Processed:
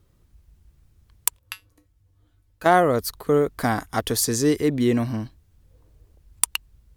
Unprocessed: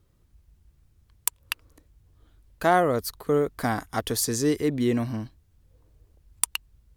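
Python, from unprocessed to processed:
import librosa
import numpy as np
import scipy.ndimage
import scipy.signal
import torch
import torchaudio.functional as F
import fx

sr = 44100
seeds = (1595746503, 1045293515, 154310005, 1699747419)

y = fx.comb_fb(x, sr, f0_hz=100.0, decay_s=0.17, harmonics='odd', damping=0.0, mix_pct=80, at=(1.39, 2.66))
y = y * 10.0 ** (3.5 / 20.0)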